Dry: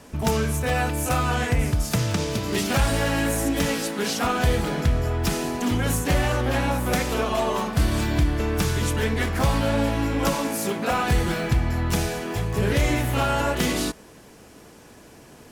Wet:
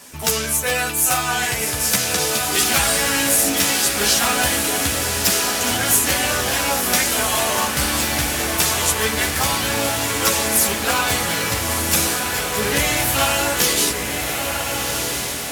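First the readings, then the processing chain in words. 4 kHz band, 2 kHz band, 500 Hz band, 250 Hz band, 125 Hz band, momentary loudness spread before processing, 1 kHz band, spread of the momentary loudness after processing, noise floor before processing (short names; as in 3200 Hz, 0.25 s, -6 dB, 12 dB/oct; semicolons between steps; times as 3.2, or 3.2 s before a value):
+11.5 dB, +8.0 dB, +1.5 dB, -1.5 dB, -6.0 dB, 3 LU, +4.5 dB, 5 LU, -48 dBFS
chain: chorus voices 2, 0.19 Hz, delay 12 ms, depth 2.8 ms; tilt +3.5 dB/oct; diffused feedback echo 1.359 s, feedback 58%, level -4.5 dB; gain +6 dB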